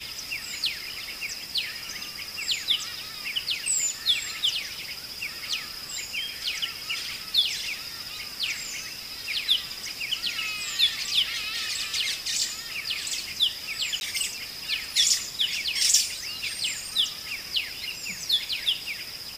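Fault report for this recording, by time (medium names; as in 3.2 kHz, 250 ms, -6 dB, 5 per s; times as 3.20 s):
14.00–14.01 s: dropout 11 ms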